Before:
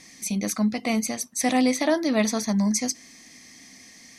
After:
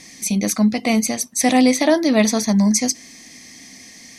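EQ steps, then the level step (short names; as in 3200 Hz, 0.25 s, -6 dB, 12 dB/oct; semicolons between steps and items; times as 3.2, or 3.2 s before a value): bell 1300 Hz -4 dB 0.77 oct; +7.0 dB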